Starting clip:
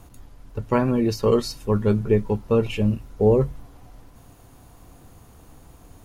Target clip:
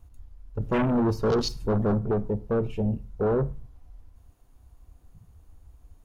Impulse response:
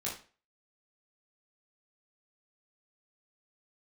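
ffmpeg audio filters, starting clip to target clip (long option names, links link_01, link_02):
-filter_complex "[0:a]asettb=1/sr,asplit=3[link_01][link_02][link_03];[link_01]atrim=end=0.604[link_04];[link_02]atrim=start=0.6:end=1.99,asetpts=PTS-STARTPTS,afade=type=in:duration=0.004:curve=qsin,afade=type=out:start_time=1.386:duration=0.004:curve=qsin,acontrast=65[link_05];[link_03]atrim=start=1.986[link_06];[link_04][link_05]acrossfade=duration=0.004:curve1=hsin:curve2=qsin[link_07];[link_07][link_06]acrossfade=duration=0.004:curve1=qsin:curve2=hsin,asoftclip=type=tanh:threshold=-20.5dB,afwtdn=0.0282,asplit=2[link_08][link_09];[1:a]atrim=start_sample=2205,adelay=32[link_10];[link_09][link_10]afir=irnorm=-1:irlink=0,volume=-21dB[link_11];[link_08][link_11]amix=inputs=2:normalize=0"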